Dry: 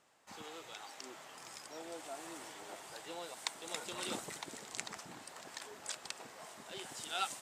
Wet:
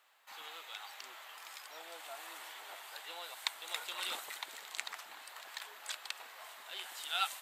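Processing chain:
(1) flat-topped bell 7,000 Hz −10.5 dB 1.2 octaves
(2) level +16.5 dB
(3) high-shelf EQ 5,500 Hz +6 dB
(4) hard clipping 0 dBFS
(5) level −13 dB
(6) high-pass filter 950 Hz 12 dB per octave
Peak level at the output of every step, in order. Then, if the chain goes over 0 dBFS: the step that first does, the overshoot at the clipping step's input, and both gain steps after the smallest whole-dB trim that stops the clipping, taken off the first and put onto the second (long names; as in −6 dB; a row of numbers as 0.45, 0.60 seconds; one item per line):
−20.0, −3.5, −1.5, −1.5, −14.5, −15.0 dBFS
no step passes full scale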